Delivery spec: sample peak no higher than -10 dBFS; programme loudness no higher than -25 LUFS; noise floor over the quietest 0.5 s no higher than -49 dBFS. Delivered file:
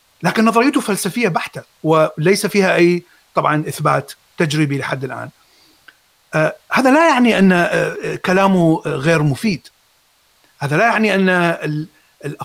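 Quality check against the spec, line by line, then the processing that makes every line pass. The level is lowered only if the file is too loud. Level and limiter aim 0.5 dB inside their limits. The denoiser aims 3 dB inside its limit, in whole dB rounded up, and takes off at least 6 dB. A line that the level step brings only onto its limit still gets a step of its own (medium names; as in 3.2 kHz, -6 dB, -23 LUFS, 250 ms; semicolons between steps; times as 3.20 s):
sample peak -2.0 dBFS: fail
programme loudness -15.5 LUFS: fail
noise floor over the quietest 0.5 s -57 dBFS: pass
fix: trim -10 dB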